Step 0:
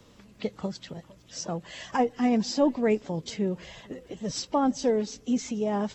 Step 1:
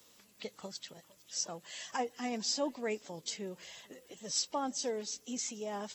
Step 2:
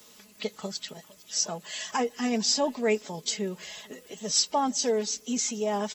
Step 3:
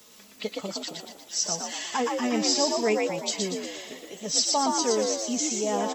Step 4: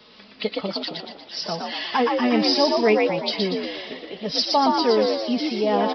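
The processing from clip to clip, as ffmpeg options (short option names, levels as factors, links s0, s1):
-af "aemphasis=mode=production:type=riaa,volume=0.376"
-af "aecho=1:1:4.7:0.52,volume=2.51"
-filter_complex "[0:a]asplit=7[s0][s1][s2][s3][s4][s5][s6];[s1]adelay=118,afreqshift=60,volume=0.708[s7];[s2]adelay=236,afreqshift=120,volume=0.339[s8];[s3]adelay=354,afreqshift=180,volume=0.162[s9];[s4]adelay=472,afreqshift=240,volume=0.0785[s10];[s5]adelay=590,afreqshift=300,volume=0.0376[s11];[s6]adelay=708,afreqshift=360,volume=0.018[s12];[s0][s7][s8][s9][s10][s11][s12]amix=inputs=7:normalize=0"
-af "aresample=11025,aresample=44100,volume=2.11"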